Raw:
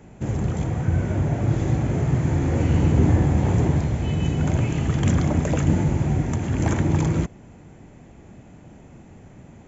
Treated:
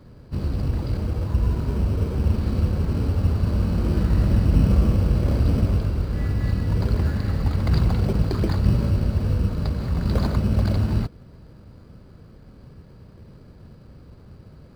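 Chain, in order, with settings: wide varispeed 0.656×; in parallel at -7 dB: sample-and-hold 16×; on the sum: gain -3 dB

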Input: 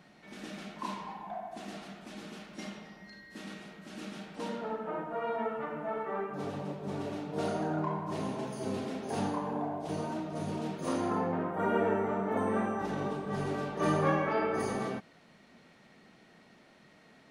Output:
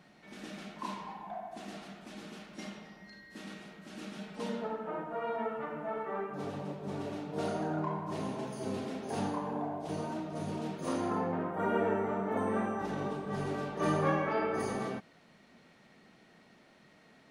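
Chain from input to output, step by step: 4.18–4.67 comb 4.7 ms, depth 59%; gain -1.5 dB

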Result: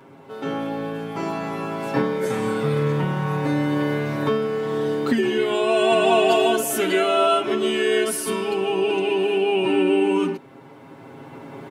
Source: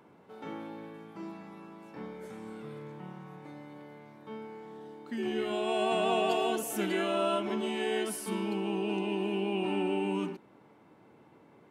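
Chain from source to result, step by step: recorder AGC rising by 7.1 dB/s; comb 7.4 ms, depth 96%; gain +8.5 dB

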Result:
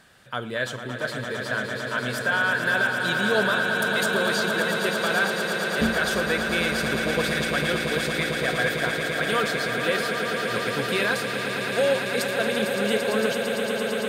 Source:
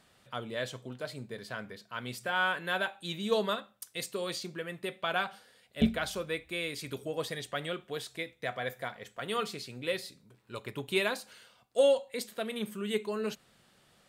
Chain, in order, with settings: bell 1600 Hz +11 dB 0.22 oct; limiter -22.5 dBFS, peak gain reduction 9.5 dB; swelling echo 0.113 s, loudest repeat 8, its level -9 dB; gain +7.5 dB

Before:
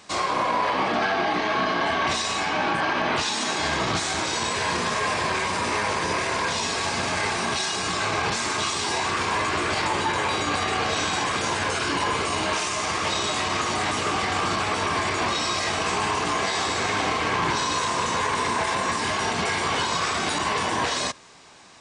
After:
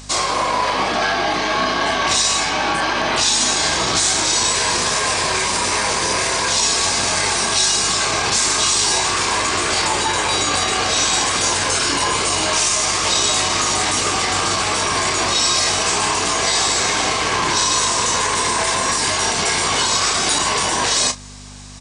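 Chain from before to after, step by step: low shelf 160 Hz +8 dB; hum 50 Hz, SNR 10 dB; tone controls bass -8 dB, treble +12 dB; doubler 32 ms -11 dB; gain +3.5 dB

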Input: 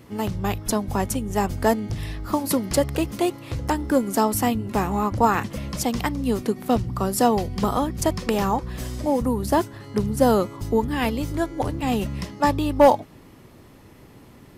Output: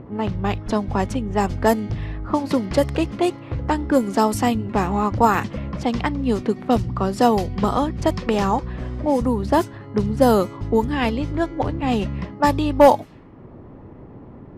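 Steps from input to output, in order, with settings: upward compressor, threshold -35 dBFS; low-pass opened by the level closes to 800 Hz, open at -15 dBFS; gain +2.5 dB

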